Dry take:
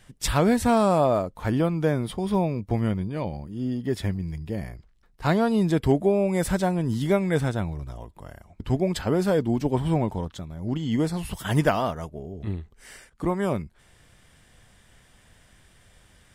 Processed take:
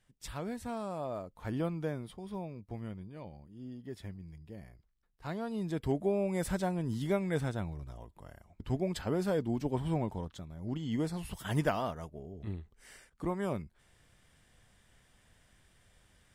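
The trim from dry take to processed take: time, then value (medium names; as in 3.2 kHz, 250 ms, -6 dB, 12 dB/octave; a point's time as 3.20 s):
0.95 s -18.5 dB
1.67 s -10 dB
2.20 s -17 dB
5.30 s -17 dB
6.13 s -9 dB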